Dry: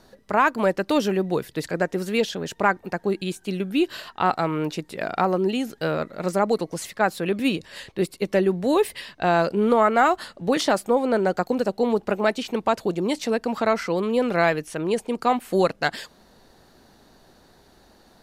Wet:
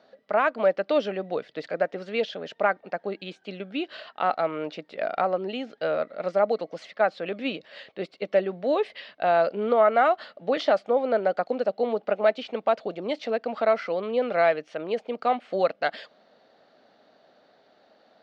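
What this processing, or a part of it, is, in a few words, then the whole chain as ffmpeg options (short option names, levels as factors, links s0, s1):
phone earpiece: -af "highpass=350,equalizer=f=360:t=q:w=4:g=-8,equalizer=f=620:t=q:w=4:g=6,equalizer=f=970:t=q:w=4:g=-9,equalizer=f=1700:t=q:w=4:g=-4,equalizer=f=2600:t=q:w=4:g=-3,equalizer=f=3800:t=q:w=4:g=-3,lowpass=f=3900:w=0.5412,lowpass=f=3900:w=1.3066,volume=0.891"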